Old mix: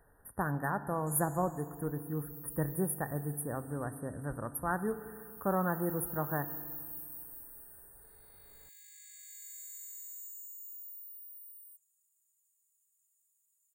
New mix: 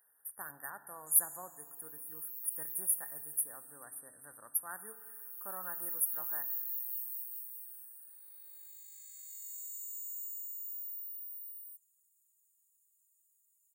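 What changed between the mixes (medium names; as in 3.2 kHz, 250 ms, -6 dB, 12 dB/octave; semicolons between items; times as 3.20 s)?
speech +4.0 dB; master: add differentiator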